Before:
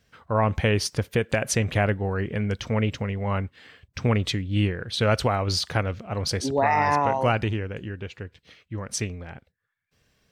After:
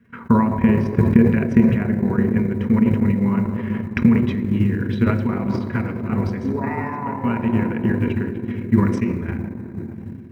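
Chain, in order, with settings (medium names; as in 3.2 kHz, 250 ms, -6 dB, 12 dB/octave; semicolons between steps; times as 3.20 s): treble shelf 2.6 kHz -2 dB, from 3.10 s +7.5 dB; compression 8:1, threshold -31 dBFS, peak gain reduction 15.5 dB; reverberation RT60 3.5 s, pre-delay 3 ms, DRR 3 dB; transient shaper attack +11 dB, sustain -10 dB; FFT filter 140 Hz 0 dB, 1.2 kHz -2 dB, 2.2 kHz +1 dB, 3.5 kHz -21 dB, 10 kHz -23 dB; companded quantiser 8-bit; small resonant body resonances 240/350/970/3900 Hz, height 16 dB, ringing for 80 ms; decay stretcher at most 49 dB/s; trim -4.5 dB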